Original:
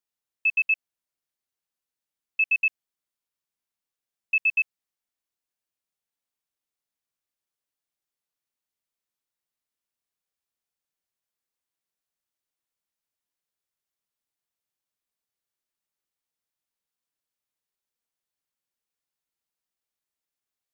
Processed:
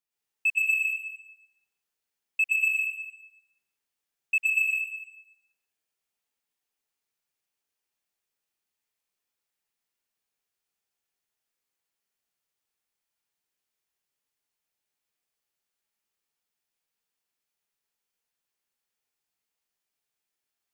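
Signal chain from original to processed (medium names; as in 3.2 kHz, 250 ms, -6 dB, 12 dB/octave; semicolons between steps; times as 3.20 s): peaking EQ 2.5 kHz +3.5 dB 0.42 oct; in parallel at -3 dB: saturation -22 dBFS, distortion -12 dB; on the sum: reverberation RT60 0.85 s, pre-delay 97 ms, DRR -5 dB; trim -7.5 dB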